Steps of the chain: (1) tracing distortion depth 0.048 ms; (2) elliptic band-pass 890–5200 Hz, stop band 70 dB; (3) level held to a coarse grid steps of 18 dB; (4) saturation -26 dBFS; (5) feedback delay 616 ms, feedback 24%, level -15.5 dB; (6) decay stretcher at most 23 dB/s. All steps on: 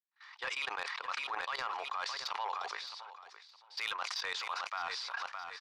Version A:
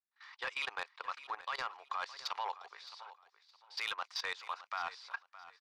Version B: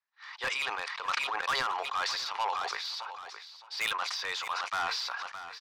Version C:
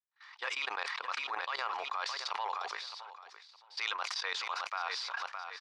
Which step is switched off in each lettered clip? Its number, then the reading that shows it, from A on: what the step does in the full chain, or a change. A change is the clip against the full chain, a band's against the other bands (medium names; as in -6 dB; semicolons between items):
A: 6, crest factor change -3.0 dB; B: 3, loudness change +5.5 LU; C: 4, distortion -18 dB